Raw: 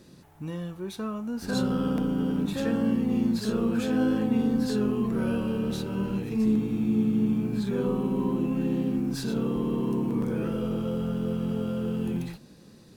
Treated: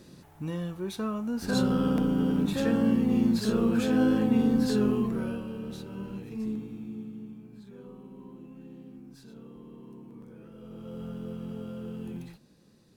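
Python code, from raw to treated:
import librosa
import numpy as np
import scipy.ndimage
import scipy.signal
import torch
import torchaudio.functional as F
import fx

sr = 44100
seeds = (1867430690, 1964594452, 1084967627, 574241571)

y = fx.gain(x, sr, db=fx.line((4.94, 1.0), (5.46, -9.0), (6.45, -9.0), (7.41, -20.0), (10.5, -20.0), (11.03, -9.0)))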